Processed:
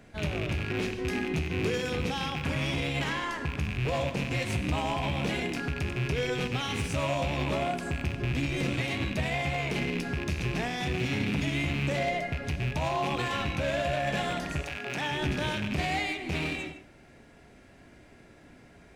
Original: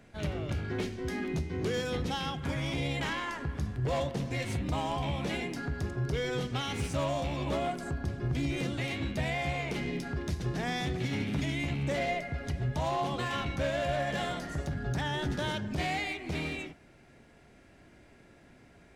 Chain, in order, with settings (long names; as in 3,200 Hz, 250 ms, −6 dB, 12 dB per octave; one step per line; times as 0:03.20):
loose part that buzzes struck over −37 dBFS, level −27 dBFS
0:14.62–0:15.10: high-pass filter 680 Hz → 180 Hz 12 dB per octave
brickwall limiter −23.5 dBFS, peak gain reduction 5.5 dB
reverb whose tail is shaped and stops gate 180 ms flat, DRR 9.5 dB
level +3 dB